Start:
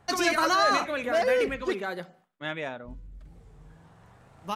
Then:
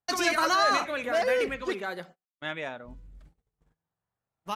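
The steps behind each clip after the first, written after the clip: gate -46 dBFS, range -32 dB; low shelf 500 Hz -4 dB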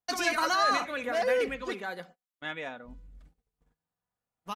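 comb 4.1 ms, depth 36%; gain -3 dB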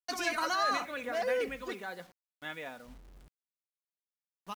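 bit-crush 9-bit; gain -4.5 dB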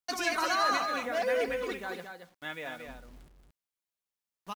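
echo 0.226 s -6.5 dB; gain +2 dB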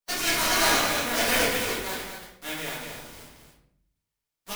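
spectral contrast lowered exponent 0.41; flange 0.44 Hz, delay 4.7 ms, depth 8 ms, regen -58%; shoebox room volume 100 m³, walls mixed, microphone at 1.7 m; gain +3 dB

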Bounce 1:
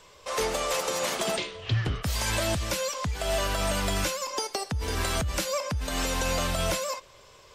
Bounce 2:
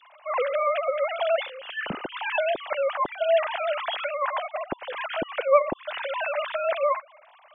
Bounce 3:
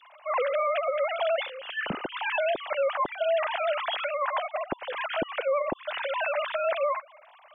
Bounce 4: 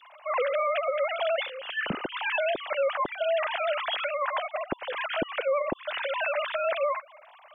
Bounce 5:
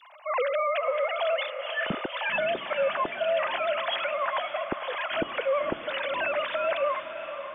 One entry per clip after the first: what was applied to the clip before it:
sine-wave speech; gain +2 dB
limiter -19 dBFS, peak gain reduction 12 dB
dynamic EQ 840 Hz, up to -4 dB, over -38 dBFS, Q 1.5; gain +1.5 dB
diffused feedback echo 0.529 s, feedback 56%, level -10 dB

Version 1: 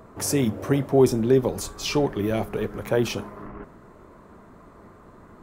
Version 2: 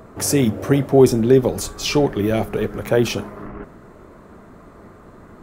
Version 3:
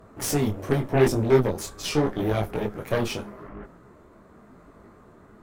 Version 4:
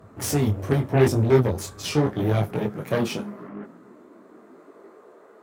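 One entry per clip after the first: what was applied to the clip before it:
bell 1000 Hz -4.5 dB 0.3 oct; gain +5.5 dB
added harmonics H 8 -17 dB, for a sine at -1 dBFS; detuned doubles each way 29 cents; gain -4 dB
high-pass sweep 88 Hz -> 470 Hz, 1.72–5.26

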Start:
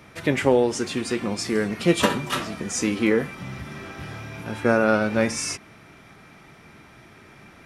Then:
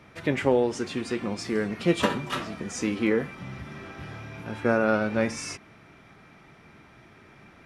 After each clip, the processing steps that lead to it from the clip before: high shelf 6700 Hz -10.5 dB; gain -3.5 dB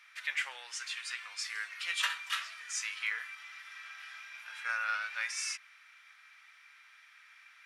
HPF 1500 Hz 24 dB/oct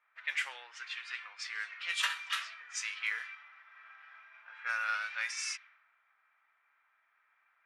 low-pass opened by the level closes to 660 Hz, open at -31 dBFS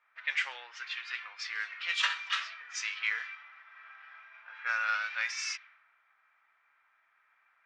LPF 6200 Hz 24 dB/oct; gain +3 dB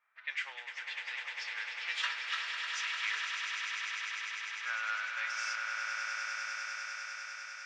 swelling echo 0.1 s, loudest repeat 8, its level -8 dB; gain -6 dB

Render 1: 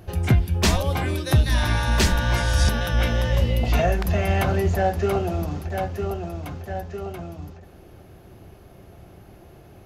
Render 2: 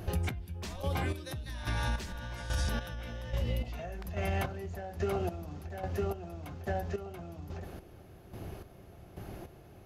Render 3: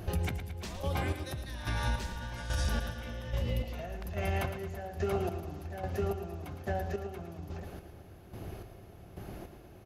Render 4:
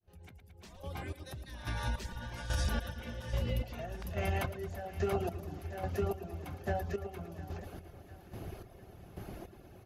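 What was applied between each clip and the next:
limiter -14 dBFS, peak gain reduction 5 dB; compressor 4:1, threshold -33 dBFS, peak gain reduction 13 dB; chopper 1.2 Hz, depth 65%, duty 35%; gain +2.5 dB
feedback echo 0.111 s, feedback 54%, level -10 dB
opening faded in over 2.50 s; reverb removal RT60 0.6 s; split-band echo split 670 Hz, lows 0.306 s, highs 0.705 s, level -16 dB

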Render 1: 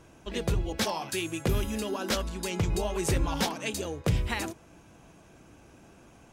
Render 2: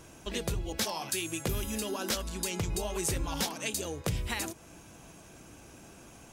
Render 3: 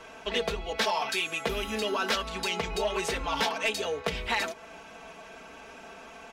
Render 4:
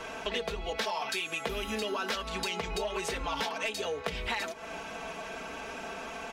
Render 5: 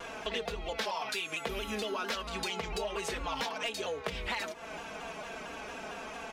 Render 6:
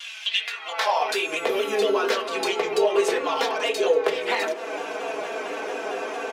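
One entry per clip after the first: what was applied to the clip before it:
high shelf 4400 Hz +10.5 dB; compressor 2:1, threshold -36 dBFS, peak gain reduction 9 dB; gain +1.5 dB
three-band isolator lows -15 dB, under 420 Hz, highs -21 dB, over 4200 Hz; comb 4.5 ms, depth 78%; soft clip -26.5 dBFS, distortion -18 dB; gain +8.5 dB
compressor 4:1, threshold -39 dBFS, peak gain reduction 13 dB; gain +6.5 dB
shaped vibrato saw down 4.4 Hz, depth 100 cents; gain -2 dB
echo 1.167 s -22 dB; on a send at -2 dB: reverb RT60 0.45 s, pre-delay 3 ms; on the sum: high-pass sweep 3100 Hz -> 410 Hz, 0.33–1.11; gain +7 dB

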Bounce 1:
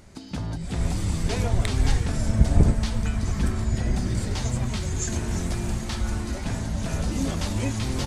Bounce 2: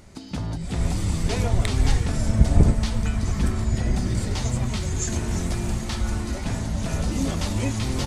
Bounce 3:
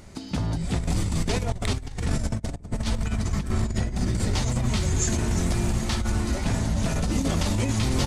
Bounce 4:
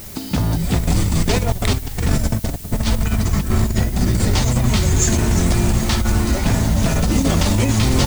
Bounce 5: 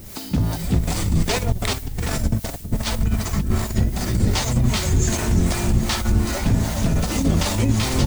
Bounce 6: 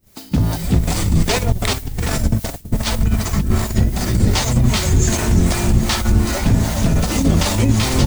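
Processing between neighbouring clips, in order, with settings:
notch 1600 Hz, Q 24; gain +1.5 dB
negative-ratio compressor -24 dBFS, ratio -0.5
added noise blue -45 dBFS; gain +8 dB
harmonic tremolo 2.6 Hz, depth 70%, crossover 440 Hz
expander -25 dBFS; gain +4 dB

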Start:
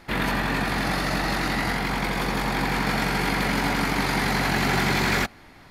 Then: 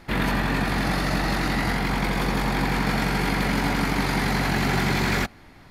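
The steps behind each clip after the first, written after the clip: in parallel at -0.5 dB: vocal rider; on the sum: low shelf 290 Hz +5 dB; gain -7 dB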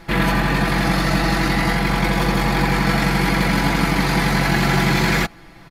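comb 6 ms; gain +4 dB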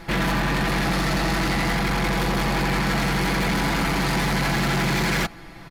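soft clip -21.5 dBFS, distortion -8 dB; gain +2 dB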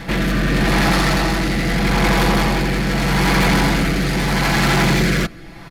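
rotary speaker horn 0.8 Hz; pre-echo 0.127 s -14 dB; gain +7.5 dB

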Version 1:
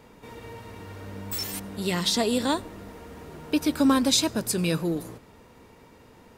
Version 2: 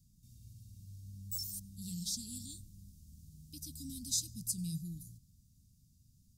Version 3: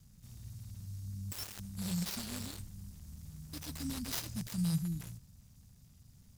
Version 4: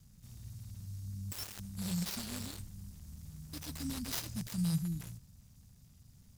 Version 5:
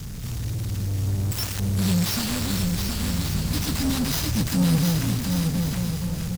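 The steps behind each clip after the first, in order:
inverse Chebyshev band-stop 600–1500 Hz, stop band 80 dB; gain -7 dB
switching dead time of 0.069 ms; gain +7 dB
nothing audible
power-law curve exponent 0.5; bouncing-ball echo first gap 0.72 s, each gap 0.65×, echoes 5; gain +6 dB

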